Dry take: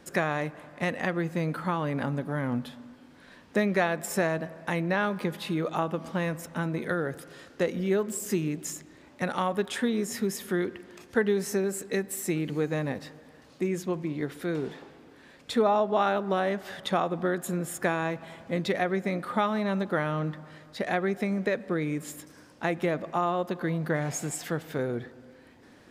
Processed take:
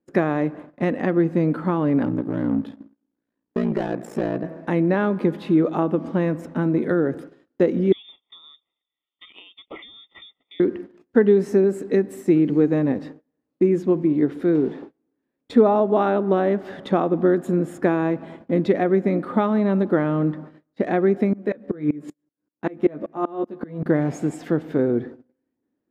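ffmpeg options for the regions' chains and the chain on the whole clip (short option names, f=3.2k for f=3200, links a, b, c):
-filter_complex "[0:a]asettb=1/sr,asplit=3[a][b][c];[a]atrim=end=2.044[d];[b]atrim=start=2.04:end=4.44,asetpts=PTS-STARTPTS,afade=t=in:d=0.004:c=qsin,afade=t=out:st=2.396:d=0.004:c=qsin,asoftclip=type=hard:threshold=-25.5dB,aeval=exprs='val(0)*sin(2*PI*29*n/s)':c=same[e];[c]atrim=start=4.436[f];[d][e]acrossfade=d=0.004:c1=hsin:c2=qsin[g];[g][f]acrossfade=d=0.004:c1=qsin:c2=hsin,asettb=1/sr,asplit=3[h][i][j];[h]atrim=end=7.924[k];[i]atrim=start=7.92:end=10.6,asetpts=PTS-STARTPTS,afade=t=in:d=0.004:c=qsin,afade=t=out:st=2.676:d=0.004:c=qsin,lowpass=f=3.2k:t=q:w=0.5098,lowpass=f=3.2k:t=q:w=0.6013,lowpass=f=3.2k:t=q:w=0.9,lowpass=f=3.2k:t=q:w=2.563,afreqshift=-3800,asuperstop=centerf=1600:order=20:qfactor=3.5,acompressor=threshold=-35dB:ratio=20:attack=3.2:release=140:knee=1:detection=peak[l];[j]atrim=start=10.596[m];[k][l]acrossfade=d=0.004:c1=hsin:c2=qsin[n];[n][m]acrossfade=d=0.004:c1=qsin:c2=hsin,asettb=1/sr,asplit=3[o][p][q];[o]atrim=end=21.334[r];[p]atrim=start=21.33:end=23.86,asetpts=PTS-STARTPTS,afade=t=in:d=0.004:c=qsin,afade=t=out:st=2.526:d=0.004:c=qsin,asplit=2[s][t];[t]adelay=14,volume=-4.5dB[u];[s][u]amix=inputs=2:normalize=0,atrim=end_sample=111573,aeval=exprs='val(0)*pow(10,-27*if(lt(mod(-5.2*n/s,1),2*abs(-5.2)/1000),1-mod(-5.2*n/s,1)/(2*abs(-5.2)/1000),(mod(-5.2*n/s,1)-2*abs(-5.2)/1000)/(1-2*abs(-5.2)/1000))/20)':c=same[v];[q]atrim=start=23.856[w];[r][v]acrossfade=d=0.004:c1=hsin:c2=qsin[x];[x][w]acrossfade=d=0.004:c1=qsin:c2=hsin,lowpass=f=1.6k:p=1,agate=range=-33dB:threshold=-46dB:ratio=16:detection=peak,equalizer=f=300:t=o:w=1.3:g=12,volume=2.5dB"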